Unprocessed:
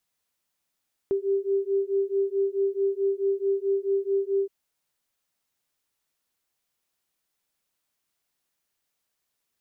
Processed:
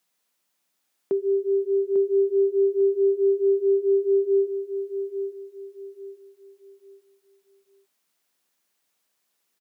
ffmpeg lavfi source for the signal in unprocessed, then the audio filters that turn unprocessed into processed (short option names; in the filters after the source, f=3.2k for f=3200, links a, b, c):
-f lavfi -i "aevalsrc='0.0531*(sin(2*PI*391*t)+sin(2*PI*395.6*t))':d=3.37:s=44100"
-filter_complex "[0:a]highpass=f=160:w=0.5412,highpass=f=160:w=1.3066,asplit=2[a][b];[b]alimiter=level_in=3dB:limit=-24dB:level=0:latency=1:release=469,volume=-3dB,volume=-3dB[c];[a][c]amix=inputs=2:normalize=0,aecho=1:1:847|1694|2541|3388:0.376|0.117|0.0361|0.0112"